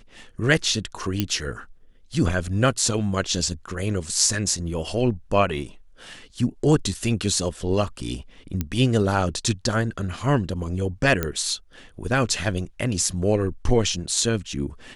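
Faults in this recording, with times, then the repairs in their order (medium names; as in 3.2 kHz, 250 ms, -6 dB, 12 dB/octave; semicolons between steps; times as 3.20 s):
1.20 s: pop -8 dBFS
8.61 s: pop -11 dBFS
11.23 s: pop -9 dBFS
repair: de-click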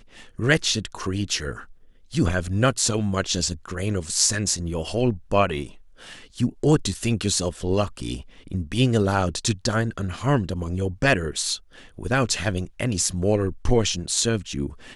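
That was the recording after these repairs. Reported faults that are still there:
1.20 s: pop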